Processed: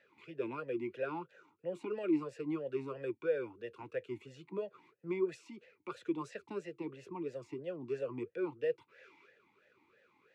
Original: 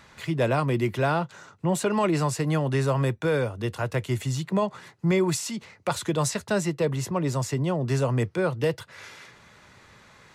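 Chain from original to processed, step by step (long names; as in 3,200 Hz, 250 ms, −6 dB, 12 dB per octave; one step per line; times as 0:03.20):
formant filter swept between two vowels e-u 3 Hz
level −3 dB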